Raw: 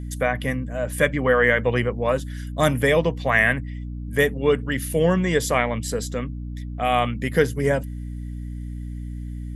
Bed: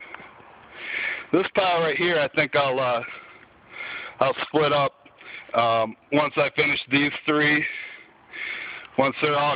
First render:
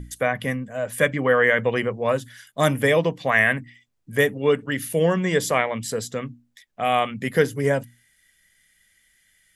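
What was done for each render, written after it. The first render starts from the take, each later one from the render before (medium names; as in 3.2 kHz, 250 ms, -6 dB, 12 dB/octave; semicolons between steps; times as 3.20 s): hum notches 60/120/180/240/300 Hz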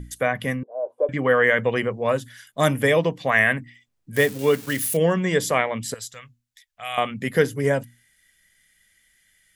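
0.63–1.09 s: elliptic band-pass 350–940 Hz; 4.16–4.97 s: zero-crossing glitches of -24.5 dBFS; 5.94–6.98 s: amplifier tone stack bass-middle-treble 10-0-10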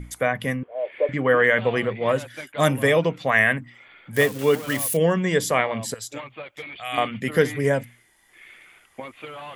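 add bed -16 dB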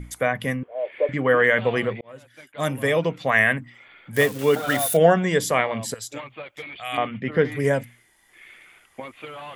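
2.01–3.24 s: fade in; 4.56–5.24 s: small resonant body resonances 710/1400/3600 Hz, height 17 dB, ringing for 30 ms; 6.97–7.52 s: distance through air 300 m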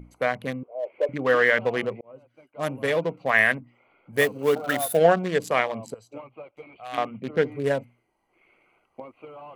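local Wiener filter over 25 samples; bass shelf 210 Hz -10.5 dB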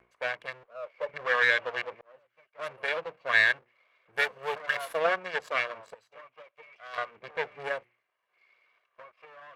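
comb filter that takes the minimum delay 1.8 ms; band-pass filter 1.8 kHz, Q 1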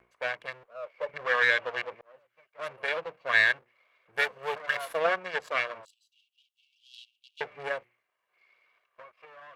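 5.85–7.41 s: steep high-pass 2.8 kHz 96 dB/octave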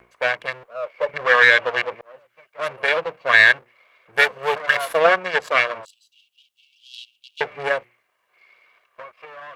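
trim +11 dB; peak limiter -1 dBFS, peak gain reduction 3 dB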